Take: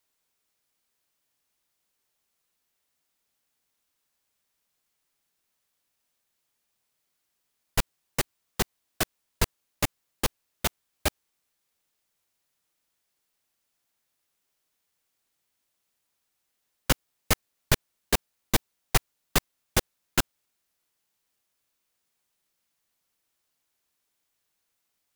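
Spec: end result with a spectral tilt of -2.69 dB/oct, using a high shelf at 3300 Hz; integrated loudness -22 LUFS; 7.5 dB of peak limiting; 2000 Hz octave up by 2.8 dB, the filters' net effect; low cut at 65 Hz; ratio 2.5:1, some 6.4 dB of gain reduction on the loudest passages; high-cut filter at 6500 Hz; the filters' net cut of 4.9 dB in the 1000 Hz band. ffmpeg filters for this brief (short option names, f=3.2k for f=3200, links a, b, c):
-af "highpass=65,lowpass=6.5k,equalizer=f=1k:t=o:g=-8.5,equalizer=f=2k:t=o:g=5,highshelf=f=3.3k:g=3,acompressor=threshold=-28dB:ratio=2.5,volume=18dB,alimiter=limit=-2dB:level=0:latency=1"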